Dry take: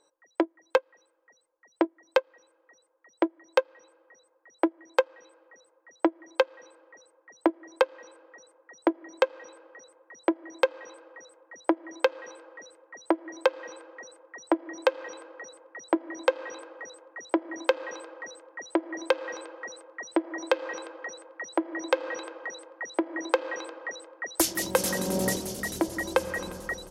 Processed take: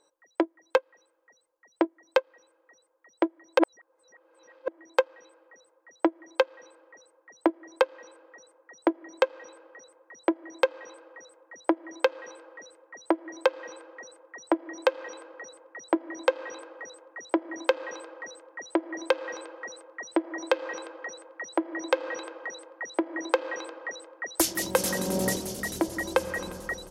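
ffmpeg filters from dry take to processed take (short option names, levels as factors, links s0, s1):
-filter_complex "[0:a]asettb=1/sr,asplit=3[s0][s1][s2];[s0]atrim=end=14.494[s3];[s1]atrim=start=14.49:end=15.34,asetpts=PTS-STARTPTS,afade=t=in:d=0.004:c=qsin,afade=t=out:st=0.846:d=0.004:c=qsin,highpass=180[s4];[s2]atrim=start=15.336[s5];[s3][s4]acrossfade=d=0.004:c1=hsin:c2=qsin[s6];[s6][s5]acrossfade=d=0.004:c1=qsin:c2=hsin,asplit=3[s7][s8][s9];[s7]atrim=end=3.592[s10];[s8]atrim=start=3.588:end=4.682,asetpts=PTS-STARTPTS,areverse[s11];[s9]atrim=start=4.678[s12];[s10][s11]acrossfade=d=0.004:c1=hsin:c2=hsin[s13];[s13][s12]acrossfade=d=0.004:c1=hsin:c2=hsin"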